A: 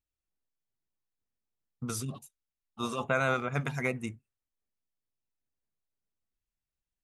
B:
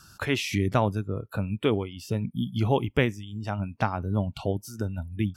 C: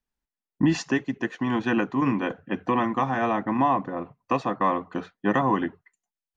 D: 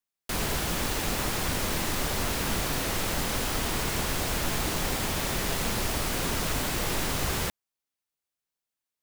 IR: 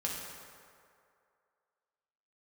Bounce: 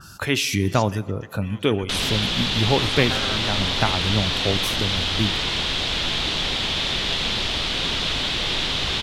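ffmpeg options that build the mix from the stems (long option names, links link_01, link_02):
-filter_complex "[0:a]aeval=exprs='val(0)*sin(2*PI*120*n/s)':channel_layout=same,volume=0dB[link_01];[1:a]volume=2.5dB,asplit=2[link_02][link_03];[link_03]volume=-18.5dB[link_04];[2:a]tiltshelf=frequency=1500:gain=-8,volume=-15dB[link_05];[3:a]lowpass=frequency=3500:width_type=q:width=3.5,adelay=1600,volume=0.5dB[link_06];[4:a]atrim=start_sample=2205[link_07];[link_04][link_07]afir=irnorm=-1:irlink=0[link_08];[link_01][link_02][link_05][link_06][link_08]amix=inputs=5:normalize=0,acompressor=mode=upward:threshold=-35dB:ratio=2.5,adynamicequalizer=threshold=0.00708:dfrequency=2800:dqfactor=0.7:tfrequency=2800:tqfactor=0.7:attack=5:release=100:ratio=0.375:range=3.5:mode=boostabove:tftype=highshelf"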